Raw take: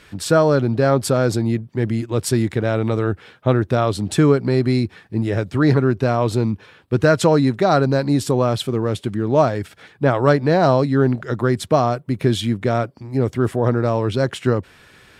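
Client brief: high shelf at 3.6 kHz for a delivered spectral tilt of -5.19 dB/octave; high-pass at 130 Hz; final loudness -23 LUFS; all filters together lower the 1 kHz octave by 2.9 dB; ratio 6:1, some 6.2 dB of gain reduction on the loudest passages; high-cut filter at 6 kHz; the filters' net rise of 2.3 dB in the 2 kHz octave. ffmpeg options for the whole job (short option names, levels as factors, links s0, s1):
-af "highpass=130,lowpass=6000,equalizer=f=1000:t=o:g=-6.5,equalizer=f=2000:t=o:g=4.5,highshelf=f=3600:g=7.5,acompressor=threshold=0.141:ratio=6,volume=1.06"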